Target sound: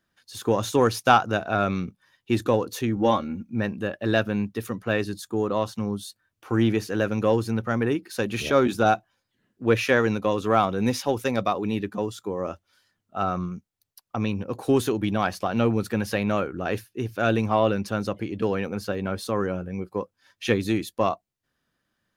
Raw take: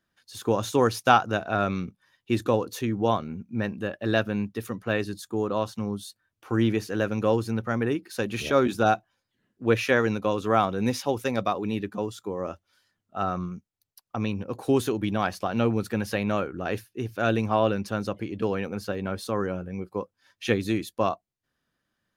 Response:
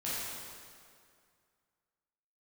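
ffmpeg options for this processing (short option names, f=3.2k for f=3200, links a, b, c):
-filter_complex "[0:a]asettb=1/sr,asplit=3[a][b][c];[a]atrim=end=2.964[d];[b]atrim=start=2.96:end=3.5,asetpts=PTS-STARTPTS,afade=t=in:d=0.004:c=qsin,afade=t=out:st=0.536:d=0.004:c=qsin,aecho=1:1:3.6:0.68,atrim=end_sample=23814[e];[c]atrim=start=3.496[f];[d][e]acrossfade=d=0.004:c1=hsin:c2=qsin[g];[g][f]acrossfade=d=0.004:c1=qsin:c2=hsin,asplit=2[h][i];[i]asoftclip=type=tanh:threshold=-19dB,volume=-10dB[j];[h][j]amix=inputs=2:normalize=0"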